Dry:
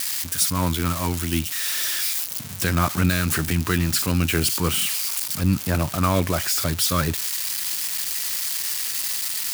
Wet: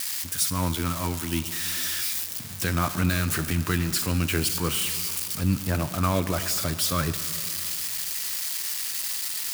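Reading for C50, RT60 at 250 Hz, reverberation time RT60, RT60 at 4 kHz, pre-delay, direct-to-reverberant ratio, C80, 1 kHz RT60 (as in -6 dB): 12.5 dB, 2.9 s, 2.9 s, 2.7 s, 6 ms, 11.5 dB, 13.0 dB, 2.9 s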